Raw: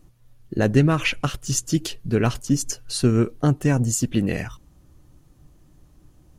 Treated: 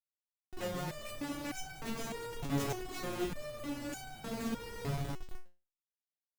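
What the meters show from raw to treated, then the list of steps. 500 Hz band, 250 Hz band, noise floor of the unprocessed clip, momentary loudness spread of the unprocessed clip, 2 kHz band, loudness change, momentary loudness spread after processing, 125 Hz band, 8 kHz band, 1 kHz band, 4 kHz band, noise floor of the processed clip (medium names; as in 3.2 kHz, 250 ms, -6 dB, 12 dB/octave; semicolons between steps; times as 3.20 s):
-14.5 dB, -17.5 dB, -55 dBFS, 9 LU, -14.5 dB, -17.5 dB, 7 LU, -20.0 dB, -19.5 dB, -10.5 dB, -14.0 dB, under -85 dBFS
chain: echo that smears into a reverb 484 ms, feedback 43%, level -3 dB; Schmitt trigger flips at -25 dBFS; resonator arpeggio 3.3 Hz 140–760 Hz; trim -2 dB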